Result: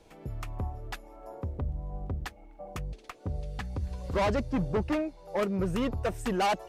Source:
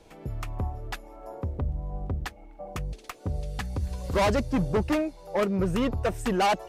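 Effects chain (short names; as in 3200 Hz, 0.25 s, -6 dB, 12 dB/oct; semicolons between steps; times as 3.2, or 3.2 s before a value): 2.8–5.28 high shelf 6300 Hz -10 dB; gain -3.5 dB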